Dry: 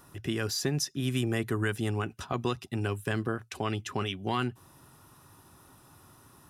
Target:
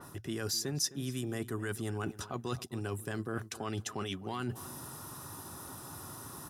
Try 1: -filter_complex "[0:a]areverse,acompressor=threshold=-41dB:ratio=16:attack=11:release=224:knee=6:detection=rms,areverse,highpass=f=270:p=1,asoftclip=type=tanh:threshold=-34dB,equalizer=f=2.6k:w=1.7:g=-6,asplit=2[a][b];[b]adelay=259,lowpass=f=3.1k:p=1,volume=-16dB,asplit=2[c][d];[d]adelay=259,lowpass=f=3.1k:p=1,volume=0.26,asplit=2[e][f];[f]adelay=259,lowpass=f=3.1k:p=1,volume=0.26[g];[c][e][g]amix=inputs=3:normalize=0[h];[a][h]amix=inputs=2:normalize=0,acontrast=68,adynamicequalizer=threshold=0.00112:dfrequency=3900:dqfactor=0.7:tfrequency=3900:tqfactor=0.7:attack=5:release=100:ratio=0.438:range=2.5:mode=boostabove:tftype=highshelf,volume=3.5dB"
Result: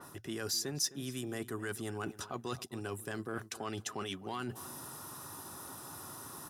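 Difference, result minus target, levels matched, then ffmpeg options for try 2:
soft clip: distortion +12 dB; 125 Hz band -4.5 dB
-filter_complex "[0:a]areverse,acompressor=threshold=-41dB:ratio=16:attack=11:release=224:knee=6:detection=rms,areverse,highpass=f=89:p=1,asoftclip=type=tanh:threshold=-27dB,equalizer=f=2.6k:w=1.7:g=-6,asplit=2[a][b];[b]adelay=259,lowpass=f=3.1k:p=1,volume=-16dB,asplit=2[c][d];[d]adelay=259,lowpass=f=3.1k:p=1,volume=0.26,asplit=2[e][f];[f]adelay=259,lowpass=f=3.1k:p=1,volume=0.26[g];[c][e][g]amix=inputs=3:normalize=0[h];[a][h]amix=inputs=2:normalize=0,acontrast=68,adynamicequalizer=threshold=0.00112:dfrequency=3900:dqfactor=0.7:tfrequency=3900:tqfactor=0.7:attack=5:release=100:ratio=0.438:range=2.5:mode=boostabove:tftype=highshelf,volume=3.5dB"

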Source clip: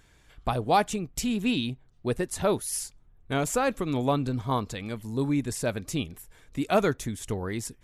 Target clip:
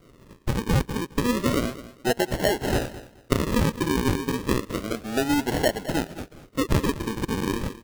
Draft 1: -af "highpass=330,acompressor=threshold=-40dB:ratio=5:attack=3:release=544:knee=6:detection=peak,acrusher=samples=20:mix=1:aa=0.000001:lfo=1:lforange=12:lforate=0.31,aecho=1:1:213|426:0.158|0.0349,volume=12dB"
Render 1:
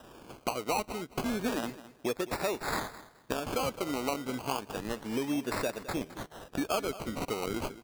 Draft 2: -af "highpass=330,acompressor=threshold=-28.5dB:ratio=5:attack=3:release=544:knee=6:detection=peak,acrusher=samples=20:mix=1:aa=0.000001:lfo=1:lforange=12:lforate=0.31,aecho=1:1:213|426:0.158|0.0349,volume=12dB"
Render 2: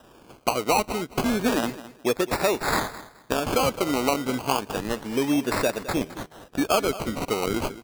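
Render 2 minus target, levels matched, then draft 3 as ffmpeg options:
decimation with a swept rate: distortion -12 dB
-af "highpass=330,acompressor=threshold=-28.5dB:ratio=5:attack=3:release=544:knee=6:detection=peak,acrusher=samples=51:mix=1:aa=0.000001:lfo=1:lforange=30.6:lforate=0.31,aecho=1:1:213|426:0.158|0.0349,volume=12dB"

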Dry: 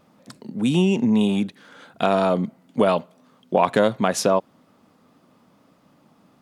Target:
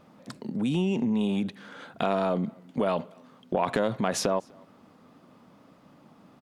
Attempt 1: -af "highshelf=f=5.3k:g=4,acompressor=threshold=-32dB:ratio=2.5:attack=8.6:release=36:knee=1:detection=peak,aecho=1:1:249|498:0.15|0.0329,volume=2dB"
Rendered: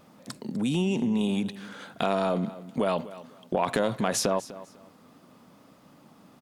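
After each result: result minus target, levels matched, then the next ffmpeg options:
echo-to-direct +12 dB; 8000 Hz band +3.5 dB
-af "highshelf=f=5.3k:g=4,acompressor=threshold=-32dB:ratio=2.5:attack=8.6:release=36:knee=1:detection=peak,aecho=1:1:249:0.0376,volume=2dB"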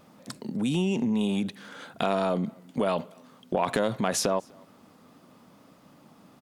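8000 Hz band +3.5 dB
-af "highshelf=f=5.3k:g=-7,acompressor=threshold=-32dB:ratio=2.5:attack=8.6:release=36:knee=1:detection=peak,aecho=1:1:249:0.0376,volume=2dB"

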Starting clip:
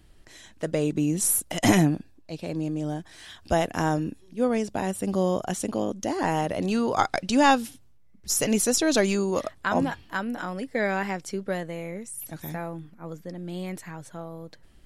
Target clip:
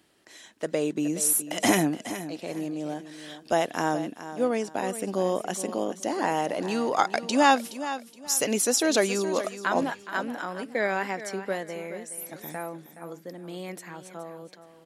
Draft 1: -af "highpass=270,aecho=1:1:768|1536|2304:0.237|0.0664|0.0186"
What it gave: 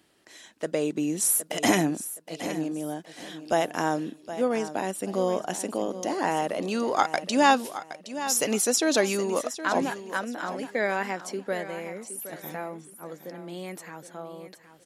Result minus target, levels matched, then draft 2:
echo 0.348 s late
-af "highpass=270,aecho=1:1:420|840|1260:0.237|0.0664|0.0186"

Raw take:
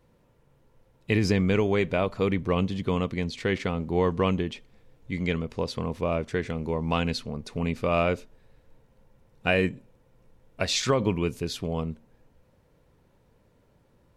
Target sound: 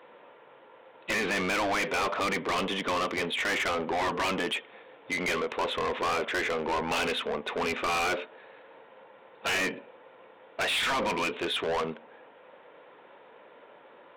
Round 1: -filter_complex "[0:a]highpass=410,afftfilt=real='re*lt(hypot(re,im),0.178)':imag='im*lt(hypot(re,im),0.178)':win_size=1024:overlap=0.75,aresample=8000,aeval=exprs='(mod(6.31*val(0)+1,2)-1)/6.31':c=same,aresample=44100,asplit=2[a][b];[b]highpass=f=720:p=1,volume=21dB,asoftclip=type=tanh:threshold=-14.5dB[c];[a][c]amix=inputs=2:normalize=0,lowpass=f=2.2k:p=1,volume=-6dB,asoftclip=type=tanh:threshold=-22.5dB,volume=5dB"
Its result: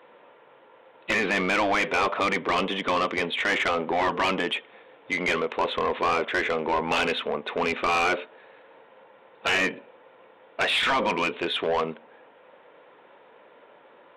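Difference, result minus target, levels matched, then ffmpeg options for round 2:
soft clip: distortion -8 dB
-filter_complex "[0:a]highpass=410,afftfilt=real='re*lt(hypot(re,im),0.178)':imag='im*lt(hypot(re,im),0.178)':win_size=1024:overlap=0.75,aresample=8000,aeval=exprs='(mod(6.31*val(0)+1,2)-1)/6.31':c=same,aresample=44100,asplit=2[a][b];[b]highpass=f=720:p=1,volume=21dB,asoftclip=type=tanh:threshold=-14.5dB[c];[a][c]amix=inputs=2:normalize=0,lowpass=f=2.2k:p=1,volume=-6dB,asoftclip=type=tanh:threshold=-30.5dB,volume=5dB"

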